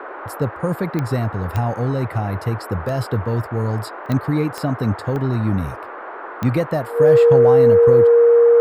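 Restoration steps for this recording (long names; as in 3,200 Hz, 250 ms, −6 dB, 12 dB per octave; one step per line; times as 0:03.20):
click removal
notch filter 470 Hz, Q 30
repair the gap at 0:01.34/0:02.89/0:04.06/0:04.61/0:05.16/0:06.85, 1.2 ms
noise reduction from a noise print 27 dB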